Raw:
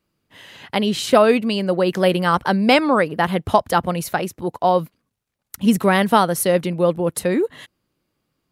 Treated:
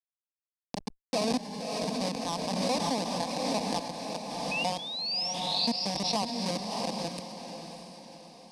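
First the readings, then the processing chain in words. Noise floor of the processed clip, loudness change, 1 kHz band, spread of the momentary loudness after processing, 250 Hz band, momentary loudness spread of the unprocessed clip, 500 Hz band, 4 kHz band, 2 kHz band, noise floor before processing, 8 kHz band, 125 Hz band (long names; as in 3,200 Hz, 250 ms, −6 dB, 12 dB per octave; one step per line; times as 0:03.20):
below −85 dBFS, −12.5 dB, −13.5 dB, 14 LU, −14.0 dB, 8 LU, −16.0 dB, −3.0 dB, −15.5 dB, −76 dBFS, −7.5 dB, −14.5 dB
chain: dynamic equaliser 4,200 Hz, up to +6 dB, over −46 dBFS, Q 6.6
two-band tremolo in antiphase 2 Hz, depth 50%, crossover 1,000 Hz
comparator with hysteresis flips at −14 dBFS
sound drawn into the spectrogram rise, 0:04.51–0:05.34, 2,500–5,800 Hz −38 dBFS
soft clipping −23 dBFS, distortion −13 dB
loudspeaker in its box 270–8,800 Hz, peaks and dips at 570 Hz −7 dB, 2,000 Hz −6 dB, 3,100 Hz −8 dB, 4,900 Hz +6 dB, 7,200 Hz −9 dB
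phaser with its sweep stopped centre 370 Hz, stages 6
on a send: feedback delay with all-pass diffusion 630 ms, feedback 46%, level −6 dB
on the sum: background raised ahead of every attack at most 25 dB per second
level +4 dB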